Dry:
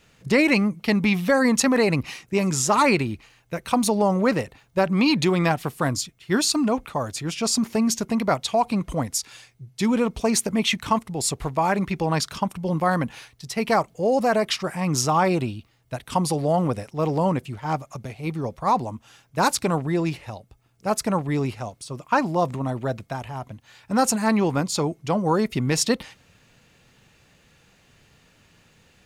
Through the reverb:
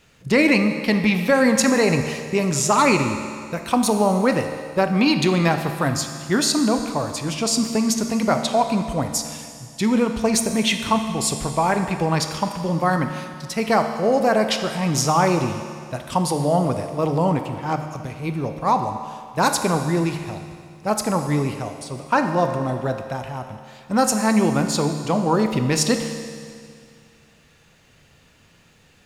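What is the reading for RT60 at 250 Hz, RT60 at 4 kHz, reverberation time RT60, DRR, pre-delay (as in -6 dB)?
2.2 s, 2.2 s, 2.2 s, 6.0 dB, 23 ms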